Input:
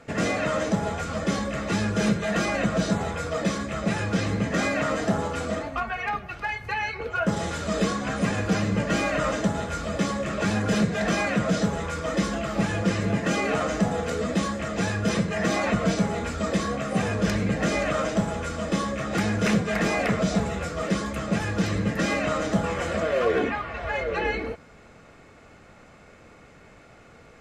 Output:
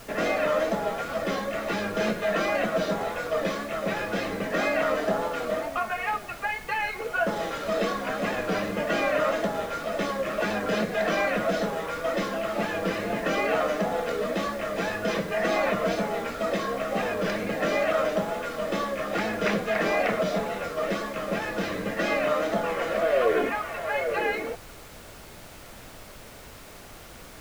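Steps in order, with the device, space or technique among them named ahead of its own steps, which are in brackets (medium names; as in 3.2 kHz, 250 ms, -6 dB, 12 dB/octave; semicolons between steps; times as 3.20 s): horn gramophone (band-pass 300–4100 Hz; peaking EQ 620 Hz +4 dB 0.37 oct; wow and flutter; pink noise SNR 18 dB)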